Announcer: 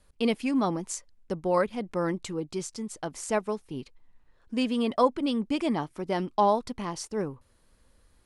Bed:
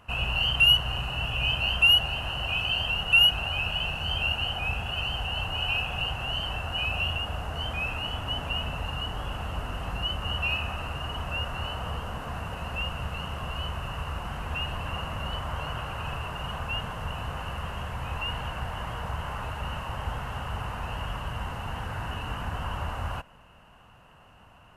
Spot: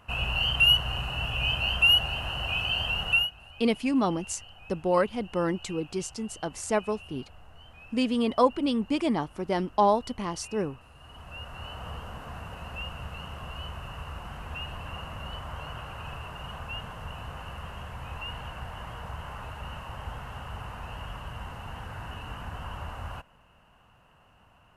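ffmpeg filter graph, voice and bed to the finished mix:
-filter_complex "[0:a]adelay=3400,volume=1dB[a];[1:a]volume=13.5dB,afade=t=out:st=3.09:d=0.21:silence=0.112202,afade=t=in:st=10.94:d=0.94:silence=0.188365[b];[a][b]amix=inputs=2:normalize=0"

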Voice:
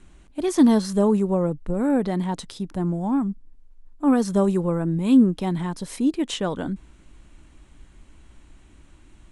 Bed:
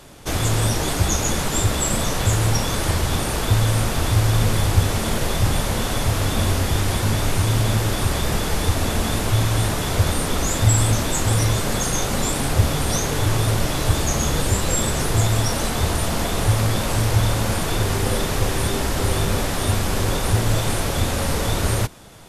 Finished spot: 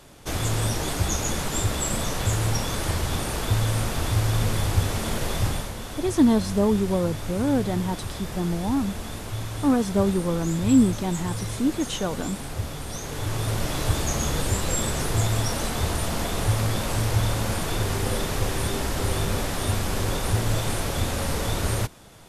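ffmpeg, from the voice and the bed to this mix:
-filter_complex "[0:a]adelay=5600,volume=-2dB[a];[1:a]volume=3dB,afade=t=out:st=5.44:d=0.29:silence=0.421697,afade=t=in:st=12.95:d=0.82:silence=0.398107[b];[a][b]amix=inputs=2:normalize=0"

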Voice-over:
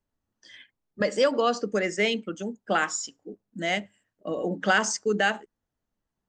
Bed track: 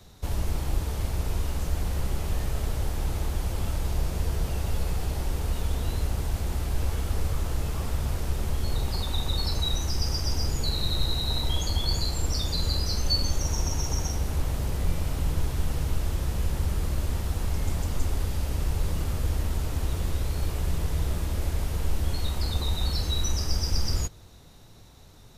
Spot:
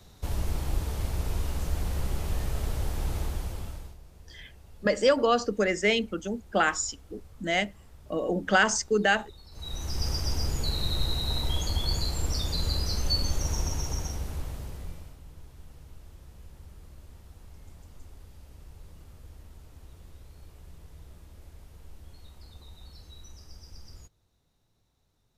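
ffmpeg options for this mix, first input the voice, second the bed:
-filter_complex "[0:a]adelay=3850,volume=0.5dB[a];[1:a]volume=19.5dB,afade=t=out:st=3.19:d=0.78:silence=0.0841395,afade=t=in:st=9.51:d=0.56:silence=0.0841395,afade=t=out:st=13.55:d=1.63:silence=0.105925[b];[a][b]amix=inputs=2:normalize=0"

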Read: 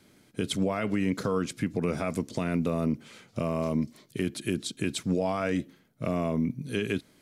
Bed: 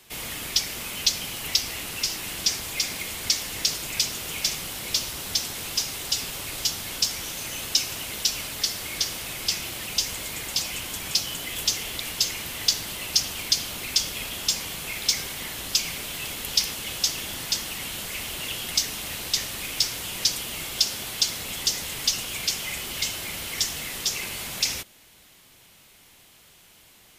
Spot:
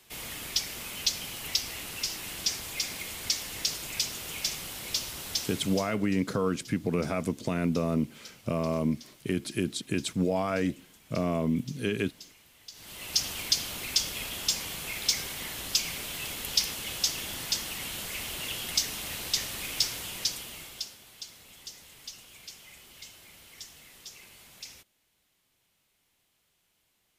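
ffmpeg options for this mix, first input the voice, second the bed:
-filter_complex "[0:a]adelay=5100,volume=0dB[a];[1:a]volume=16dB,afade=t=out:st=5.43:d=0.54:silence=0.105925,afade=t=in:st=12.72:d=0.54:silence=0.0841395,afade=t=out:st=19.84:d=1.14:silence=0.158489[b];[a][b]amix=inputs=2:normalize=0"

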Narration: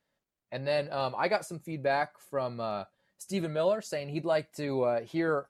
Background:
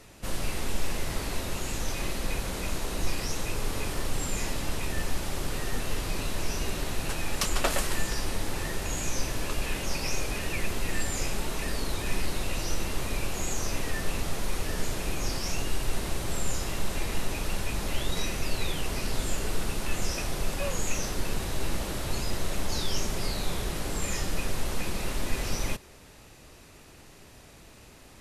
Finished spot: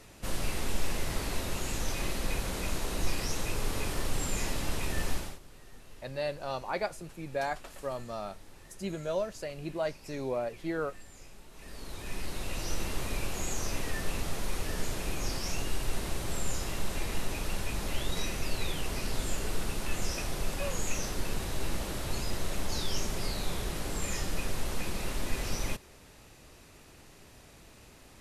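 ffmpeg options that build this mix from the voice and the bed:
-filter_complex "[0:a]adelay=5500,volume=-4.5dB[a];[1:a]volume=17dB,afade=t=out:st=5.12:d=0.27:silence=0.1,afade=t=in:st=11.51:d=1.3:silence=0.11885[b];[a][b]amix=inputs=2:normalize=0"

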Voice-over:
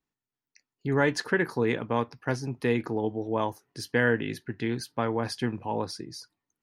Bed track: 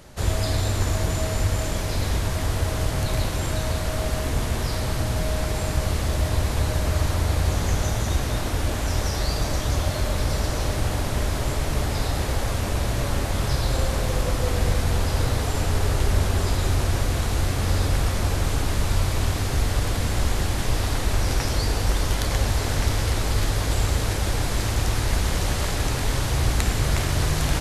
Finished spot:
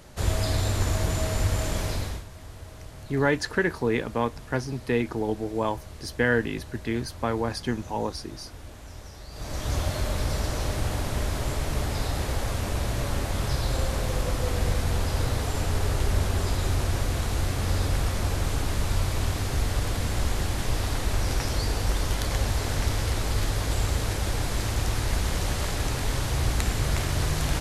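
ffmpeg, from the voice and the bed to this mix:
-filter_complex "[0:a]adelay=2250,volume=1dB[a];[1:a]volume=13dB,afade=t=out:st=1.86:d=0.39:silence=0.149624,afade=t=in:st=9.31:d=0.44:silence=0.177828[b];[a][b]amix=inputs=2:normalize=0"

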